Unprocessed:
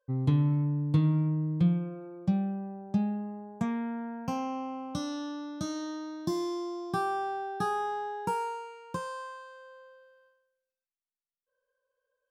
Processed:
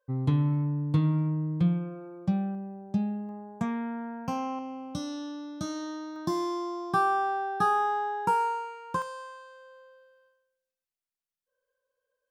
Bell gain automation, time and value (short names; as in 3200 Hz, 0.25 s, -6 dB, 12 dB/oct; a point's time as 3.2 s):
bell 1200 Hz 1.4 oct
+3.5 dB
from 2.55 s -3.5 dB
from 3.29 s +3 dB
from 4.59 s -4.5 dB
from 5.61 s +2 dB
from 6.16 s +8.5 dB
from 9.02 s -2 dB